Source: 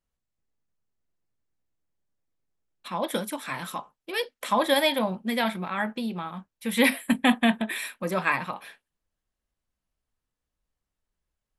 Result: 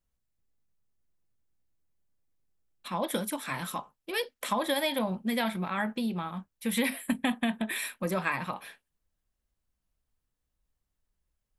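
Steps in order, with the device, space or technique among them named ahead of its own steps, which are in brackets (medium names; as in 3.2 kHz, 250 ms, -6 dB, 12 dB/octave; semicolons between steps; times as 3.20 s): ASMR close-microphone chain (bass shelf 170 Hz +6.5 dB; compression 6:1, threshold -23 dBFS, peak gain reduction 9.5 dB; treble shelf 8.6 kHz +5.5 dB); trim -2 dB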